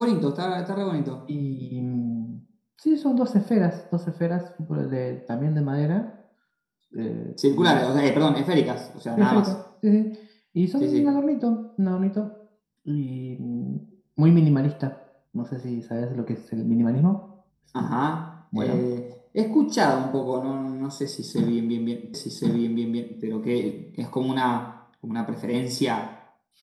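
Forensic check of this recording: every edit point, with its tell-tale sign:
0:22.14: the same again, the last 1.07 s

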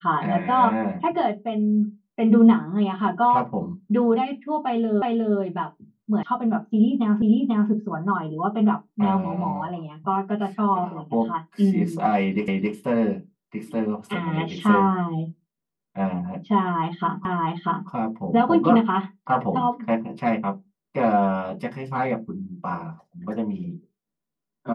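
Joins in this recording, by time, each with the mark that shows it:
0:05.02: the same again, the last 0.36 s
0:06.23: cut off before it has died away
0:07.22: the same again, the last 0.49 s
0:12.48: the same again, the last 0.27 s
0:17.25: the same again, the last 0.64 s

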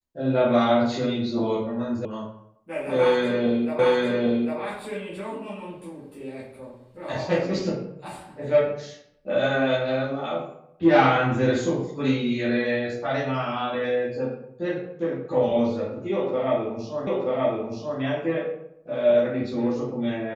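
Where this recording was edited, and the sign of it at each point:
0:02.05: cut off before it has died away
0:03.79: the same again, the last 0.8 s
0:17.07: the same again, the last 0.93 s

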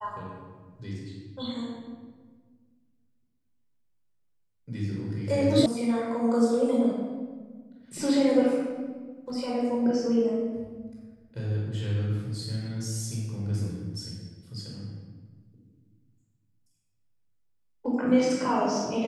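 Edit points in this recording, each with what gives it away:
0:05.66: cut off before it has died away

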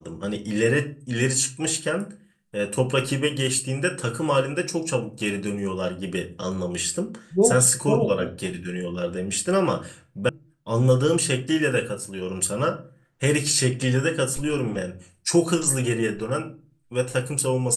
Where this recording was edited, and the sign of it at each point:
0:10.29: cut off before it has died away

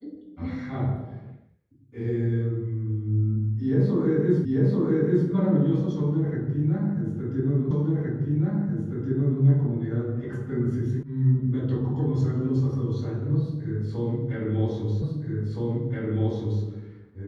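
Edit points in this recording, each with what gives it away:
0:04.45: the same again, the last 0.84 s
0:07.71: the same again, the last 1.72 s
0:11.03: cut off before it has died away
0:15.02: the same again, the last 1.62 s

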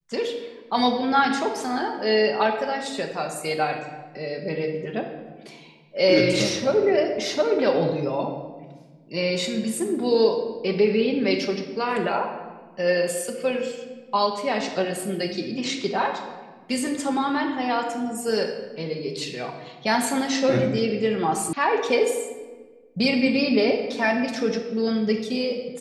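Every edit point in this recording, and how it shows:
0:21.53: cut off before it has died away

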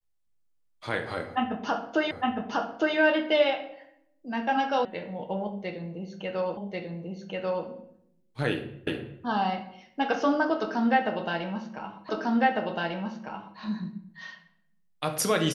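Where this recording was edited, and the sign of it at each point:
0:02.11: the same again, the last 0.86 s
0:04.85: cut off before it has died away
0:06.57: the same again, the last 1.09 s
0:08.87: the same again, the last 0.37 s
0:12.09: the same again, the last 1.5 s

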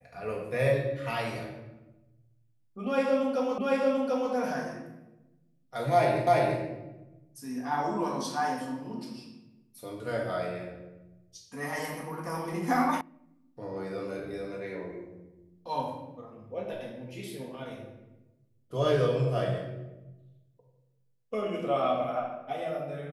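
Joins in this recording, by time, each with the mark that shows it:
0:03.58: the same again, the last 0.74 s
0:06.27: the same again, the last 0.34 s
0:13.01: cut off before it has died away

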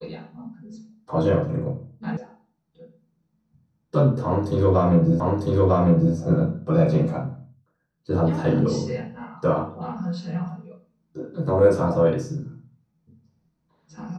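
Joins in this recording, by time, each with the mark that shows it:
0:02.17: cut off before it has died away
0:05.20: the same again, the last 0.95 s

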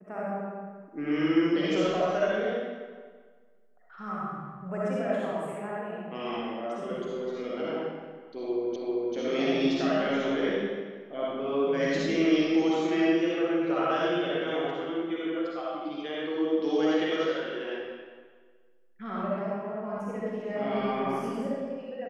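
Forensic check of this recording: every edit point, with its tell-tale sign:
0:08.76: the same again, the last 0.39 s

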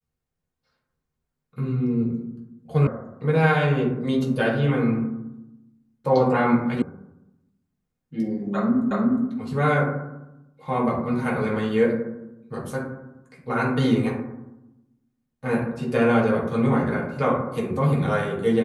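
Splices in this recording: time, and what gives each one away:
0:02.87: cut off before it has died away
0:06.82: cut off before it has died away
0:08.91: the same again, the last 0.36 s

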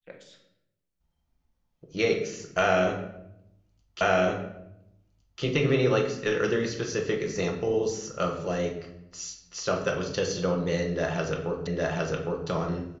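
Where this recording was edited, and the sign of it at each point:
0:04.01: the same again, the last 1.41 s
0:11.67: the same again, the last 0.81 s

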